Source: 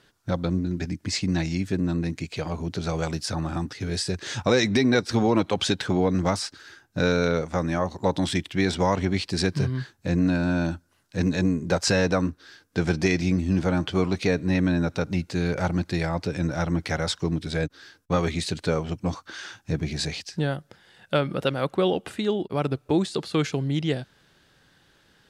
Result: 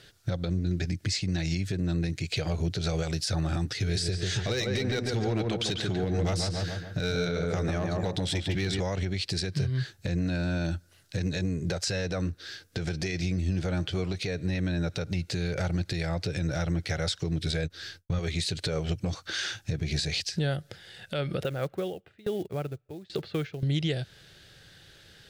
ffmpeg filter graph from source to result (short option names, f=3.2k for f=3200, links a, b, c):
-filter_complex "[0:a]asettb=1/sr,asplit=3[a][b][c];[a]atrim=end=3.764[d];[b]atrim=start=3.76:end=8.8,asetpts=PTS-STARTPTS,afade=t=in:d=0.004:c=qsin,afade=t=out:st=5.036:d=0.004:c=qsin,bandreject=f=530:w=9.5,asoftclip=type=hard:threshold=-14dB,asplit=2[e][f];[f]adelay=143,lowpass=f=1.5k:p=1,volume=-3dB,asplit=2[g][h];[h]adelay=143,lowpass=f=1.5k:p=1,volume=0.48,asplit=2[i][j];[j]adelay=143,lowpass=f=1.5k:p=1,volume=0.48,asplit=2[k][l];[l]adelay=143,lowpass=f=1.5k:p=1,volume=0.48,asplit=2[m][n];[n]adelay=143,lowpass=f=1.5k:p=1,volume=0.48,asplit=2[o][p];[p]adelay=143,lowpass=f=1.5k:p=1,volume=0.48[q];[e][g][i][k][m][o][q]amix=inputs=7:normalize=0,atrim=end_sample=222264[r];[c]atrim=start=8.796[s];[d][r]acrossfade=d=0.004:c1=hsin:c2=qsin[t];[t][s]acrossfade=d=0.004:c1=qsin:c2=hsin,asettb=1/sr,asplit=3[u][v][w];[u]atrim=end=17.634[x];[v]atrim=start=17.63:end=18.19,asetpts=PTS-STARTPTS,afade=t=in:d=0.004:c=qsin,afade=t=out:st=0.556:d=0.004:c=qsin,asubboost=boost=11:cutoff=210,agate=range=-33dB:threshold=-54dB:ratio=3:release=100:detection=peak,asplit=2[y][z];[z]adelay=12,volume=-12dB[aa];[y][aa]amix=inputs=2:normalize=0,atrim=end_sample=24696[ab];[w]atrim=start=18.186[ac];[x][ab]acrossfade=d=0.004:c1=hsin:c2=qsin[ad];[ad][ac]acrossfade=d=0.004:c1=qsin:c2=hsin,asettb=1/sr,asplit=3[ae][af][ag];[ae]atrim=end=21.434[ah];[af]atrim=start=21.43:end=23.63,asetpts=PTS-STARTPTS,afade=t=in:d=0.004:c=qsin,afade=t=out:st=2.196:d=0.004:c=qsin,lowpass=2.2k,acrusher=bits=7:mode=log:mix=0:aa=0.000001,aeval=exprs='val(0)*pow(10,-28*if(lt(mod(1.2*n/s,1),2*abs(1.2)/1000),1-mod(1.2*n/s,1)/(2*abs(1.2)/1000),(mod(1.2*n/s,1)-2*abs(1.2)/1000)/(1-2*abs(1.2)/1000))/20)':c=same[ai];[ag]atrim=start=23.626[aj];[ah][ai]acrossfade=d=0.004:c1=hsin:c2=qsin[ak];[ak][aj]acrossfade=d=0.004:c1=qsin:c2=hsin,equalizer=f=100:t=o:w=0.67:g=4,equalizer=f=250:t=o:w=0.67:g=-10,equalizer=f=1k:t=o:w=0.67:g=-12,equalizer=f=4k:t=o:w=0.67:g=3,acompressor=threshold=-31dB:ratio=6,alimiter=level_in=2.5dB:limit=-24dB:level=0:latency=1:release=75,volume=-2.5dB,volume=7dB"